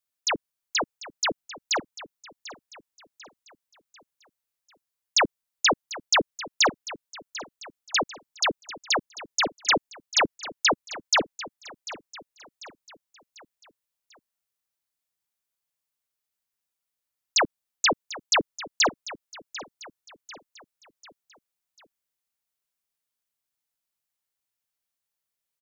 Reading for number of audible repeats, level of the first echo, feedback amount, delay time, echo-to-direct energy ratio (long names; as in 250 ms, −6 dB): 3, −16.0 dB, 46%, 744 ms, −15.0 dB